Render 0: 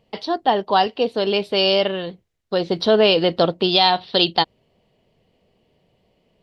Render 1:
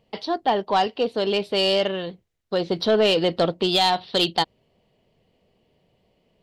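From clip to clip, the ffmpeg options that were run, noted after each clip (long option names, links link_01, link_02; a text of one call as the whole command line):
ffmpeg -i in.wav -af "acontrast=64,volume=-8.5dB" out.wav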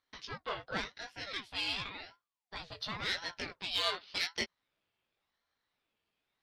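ffmpeg -i in.wav -af "flanger=delay=17:depth=3.7:speed=0.66,lowshelf=frequency=790:width_type=q:width=1.5:gain=-12.5,aeval=exprs='val(0)*sin(2*PI*740*n/s+740*0.65/0.91*sin(2*PI*0.91*n/s))':channel_layout=same,volume=-6dB" out.wav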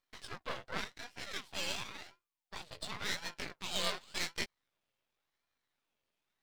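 ffmpeg -i in.wav -af "aeval=exprs='max(val(0),0)':channel_layout=same,volume=1.5dB" out.wav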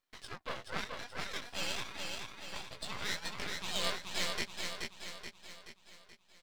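ffmpeg -i in.wav -af "aecho=1:1:428|856|1284|1712|2140|2568|2996:0.631|0.322|0.164|0.0837|0.0427|0.0218|0.0111" out.wav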